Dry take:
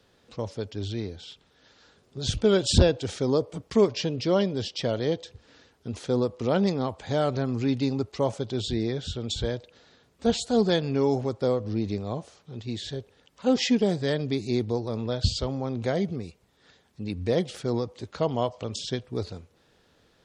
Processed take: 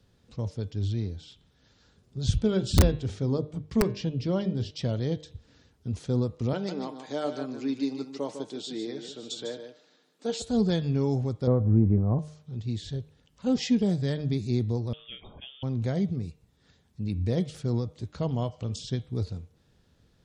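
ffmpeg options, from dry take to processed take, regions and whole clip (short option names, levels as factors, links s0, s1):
-filter_complex "[0:a]asettb=1/sr,asplit=3[s0][s1][s2];[s0]atrim=end=2.474[s3];[s1]atrim=start=2.47:end=4.71,asetpts=PTS-STARTPTS,afade=t=in:d=0.004:c=qsin,afade=t=out:st=2.236:d=0.004:c=qsin,highshelf=f=5800:g=-11,bandreject=f=50:t=h:w=6,bandreject=f=100:t=h:w=6,bandreject=f=150:t=h:w=6,bandreject=f=200:t=h:w=6,bandreject=f=250:t=h:w=6,bandreject=f=300:t=h:w=6,bandreject=f=350:t=h:w=6,bandreject=f=400:t=h:w=6,bandreject=f=450:t=h:w=6,aeval=exprs='(mod(3.16*val(0)+1,2)-1)/3.16':c=same[s4];[s2]atrim=start=4.706[s5];[s3][s4]acrossfade=d=0.004:c1=hsin:c2=qsin[s6];[s6][s5]acrossfade=d=0.004:c1=qsin:c2=hsin,asettb=1/sr,asplit=3[s7][s8][s9];[s7]atrim=end=6.534[s10];[s8]atrim=start=6.53:end=10.42,asetpts=PTS-STARTPTS,afade=t=in:d=0.004:c=qsin,afade=t=out:st=3.886:d=0.004:c=qsin,highpass=f=270:w=0.5412,highpass=f=270:w=1.3066,aecho=1:1:6.6:0.38,atrim=end_sample=171549,aecho=1:1:151:0.376,atrim=end_sample=171549[s11];[s9]atrim=start=10.416[s12];[s10][s11]acrossfade=d=0.004:c1=hsin:c2=qsin[s13];[s13][s12]acrossfade=d=0.004:c1=qsin:c2=hsin,asettb=1/sr,asplit=3[s14][s15][s16];[s14]atrim=end=11.474[s17];[s15]atrim=start=11.47:end=12.19,asetpts=PTS-STARTPTS,afade=t=in:d=0.004:c=qsin,afade=t=out:st=0.716:d=0.004:c=qsin,lowpass=f=1500:w=0.5412,lowpass=f=1500:w=1.3066,acontrast=47[s18];[s16]atrim=start=12.186[s19];[s17][s18]acrossfade=d=0.004:c1=hsin:c2=qsin[s20];[s20][s19]acrossfade=d=0.004:c1=qsin:c2=hsin,asettb=1/sr,asplit=3[s21][s22][s23];[s21]atrim=end=14.934[s24];[s22]atrim=start=14.93:end=15.63,asetpts=PTS-STARTPTS,afade=t=in:d=0.004:c=qsin,afade=t=out:st=0.696:d=0.004:c=qsin,highpass=720,lowpass=f=3200:t=q:w=0.5098,lowpass=f=3200:t=q:w=0.6013,lowpass=f=3200:t=q:w=0.9,lowpass=f=3200:t=q:w=2.563,afreqshift=-3800[s25];[s23]atrim=start=15.626[s26];[s24][s25]acrossfade=d=0.004:c1=hsin:c2=qsin[s27];[s27][s26]acrossfade=d=0.004:c1=qsin:c2=hsin,bass=f=250:g=14,treble=f=4000:g=4,bandreject=f=152.2:t=h:w=4,bandreject=f=304.4:t=h:w=4,bandreject=f=456.6:t=h:w=4,bandreject=f=608.8:t=h:w=4,bandreject=f=761:t=h:w=4,bandreject=f=913.2:t=h:w=4,bandreject=f=1065.4:t=h:w=4,bandreject=f=1217.6:t=h:w=4,bandreject=f=1369.8:t=h:w=4,bandreject=f=1522:t=h:w=4,bandreject=f=1674.2:t=h:w=4,bandreject=f=1826.4:t=h:w=4,bandreject=f=1978.6:t=h:w=4,bandreject=f=2130.8:t=h:w=4,bandreject=f=2283:t=h:w=4,bandreject=f=2435.2:t=h:w=4,bandreject=f=2587.4:t=h:w=4,bandreject=f=2739.6:t=h:w=4,bandreject=f=2891.8:t=h:w=4,bandreject=f=3044:t=h:w=4,bandreject=f=3196.2:t=h:w=4,bandreject=f=3348.4:t=h:w=4,bandreject=f=3500.6:t=h:w=4,bandreject=f=3652.8:t=h:w=4,bandreject=f=3805:t=h:w=4,bandreject=f=3957.2:t=h:w=4,bandreject=f=4109.4:t=h:w=4,volume=0.398"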